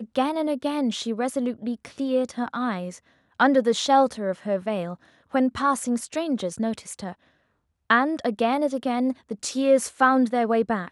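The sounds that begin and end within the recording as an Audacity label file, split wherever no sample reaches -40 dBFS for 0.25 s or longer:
3.400000	4.950000	sound
5.330000	7.130000	sound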